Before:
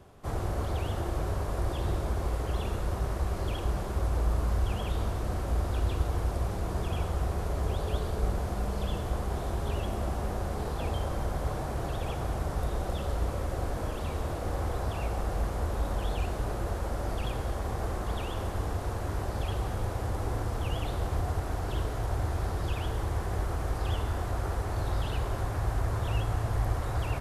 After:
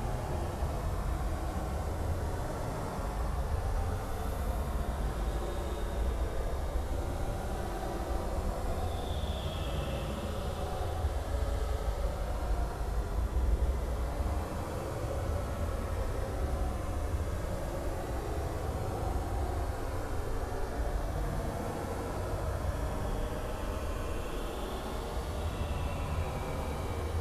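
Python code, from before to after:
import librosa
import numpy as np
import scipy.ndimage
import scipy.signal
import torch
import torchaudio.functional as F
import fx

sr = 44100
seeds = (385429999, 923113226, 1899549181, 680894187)

y = 10.0 ** (-27.5 / 20.0) * np.tanh(x / 10.0 ** (-27.5 / 20.0))
y = fx.paulstretch(y, sr, seeds[0], factor=15.0, window_s=0.1, from_s=12.34)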